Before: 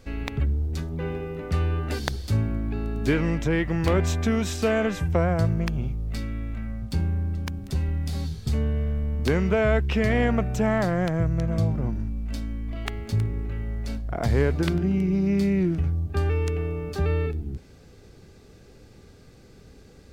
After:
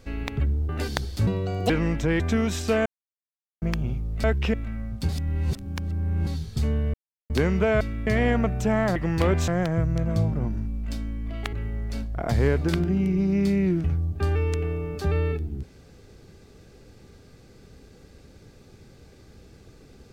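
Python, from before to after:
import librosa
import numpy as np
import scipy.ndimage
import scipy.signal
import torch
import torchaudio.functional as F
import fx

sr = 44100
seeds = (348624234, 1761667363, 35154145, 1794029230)

y = fx.edit(x, sr, fx.cut(start_s=0.69, length_s=1.11),
    fx.speed_span(start_s=2.38, length_s=0.74, speed=1.73),
    fx.move(start_s=3.62, length_s=0.52, to_s=10.9),
    fx.silence(start_s=4.8, length_s=0.76),
    fx.swap(start_s=6.18, length_s=0.26, other_s=9.71, other_length_s=0.3),
    fx.reverse_span(start_s=6.99, length_s=1.18),
    fx.silence(start_s=8.84, length_s=0.36),
    fx.cut(start_s=12.95, length_s=0.52), tone=tone)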